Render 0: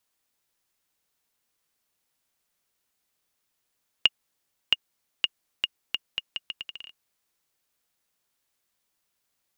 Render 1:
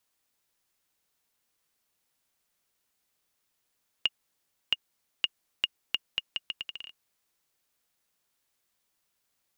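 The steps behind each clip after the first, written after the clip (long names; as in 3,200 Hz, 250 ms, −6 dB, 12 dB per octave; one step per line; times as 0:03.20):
brickwall limiter −11.5 dBFS, peak gain reduction 7.5 dB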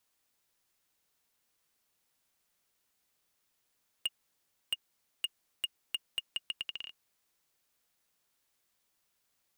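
hard clipping −26 dBFS, distortion −5 dB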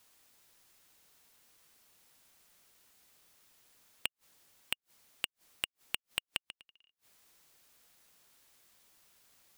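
gate with flip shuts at −39 dBFS, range −37 dB
level +11.5 dB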